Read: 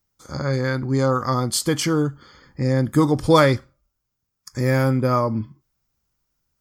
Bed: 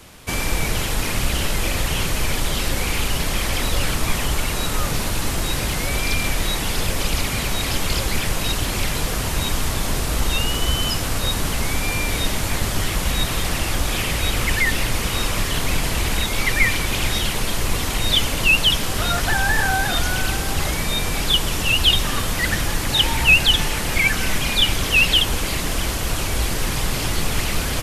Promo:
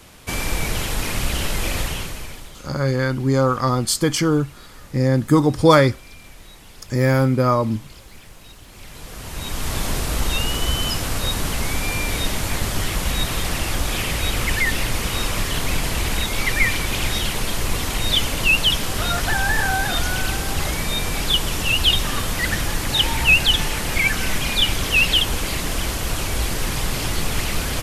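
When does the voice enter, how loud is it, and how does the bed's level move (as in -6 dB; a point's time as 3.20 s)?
2.35 s, +2.0 dB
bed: 1.81 s -1.5 dB
2.65 s -21.5 dB
8.65 s -21.5 dB
9.76 s -1 dB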